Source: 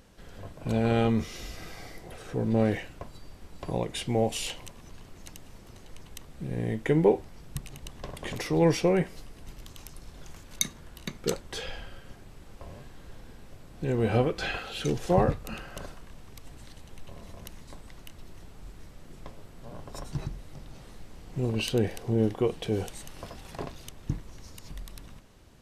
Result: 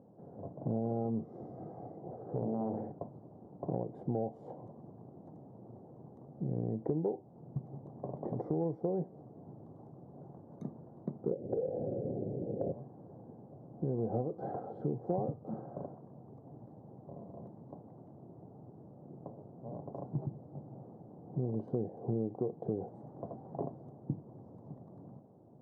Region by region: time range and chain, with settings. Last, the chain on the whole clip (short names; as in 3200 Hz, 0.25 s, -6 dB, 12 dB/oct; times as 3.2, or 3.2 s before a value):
2.21–2.92 compressor 2:1, threshold -31 dBFS + flutter echo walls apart 11.6 m, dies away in 0.67 s + Doppler distortion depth 0.9 ms
11.31–12.72 resonant low shelf 730 Hz +13 dB, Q 3 + compressor 2.5:1, threshold -25 dBFS
whole clip: elliptic band-pass 120–780 Hz, stop band 50 dB; compressor 6:1, threshold -33 dBFS; gain +2 dB